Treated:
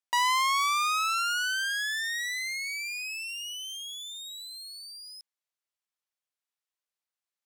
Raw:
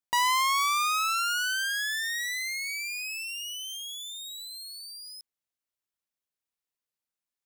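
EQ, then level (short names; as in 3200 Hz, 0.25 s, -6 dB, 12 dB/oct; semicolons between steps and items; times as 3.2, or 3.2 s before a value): HPF 560 Hz; high shelf 12000 Hz -10 dB; 0.0 dB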